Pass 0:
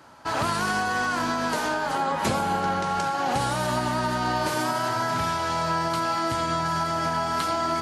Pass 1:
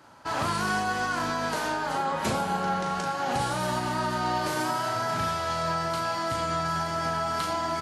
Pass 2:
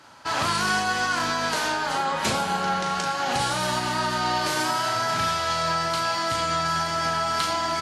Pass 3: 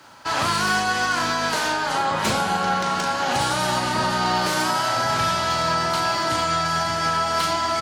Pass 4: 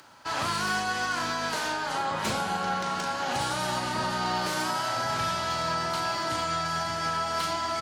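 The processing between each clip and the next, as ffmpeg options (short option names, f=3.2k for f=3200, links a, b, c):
-filter_complex "[0:a]asplit=2[a][b];[b]adelay=38,volume=-6dB[c];[a][c]amix=inputs=2:normalize=0,volume=-3.5dB"
-af "equalizer=f=4.2k:w=0.35:g=8.5"
-filter_complex "[0:a]acrossover=split=150|1600|1900[a][b][c][d];[d]asoftclip=type=hard:threshold=-25.5dB[e];[a][b][c][e]amix=inputs=4:normalize=0,asplit=2[f][g];[g]adelay=1691,volume=-6dB,highshelf=f=4k:g=-38[h];[f][h]amix=inputs=2:normalize=0,acrusher=bits=10:mix=0:aa=0.000001,volume=2.5dB"
-af "acompressor=mode=upward:threshold=-44dB:ratio=2.5,volume=-7dB"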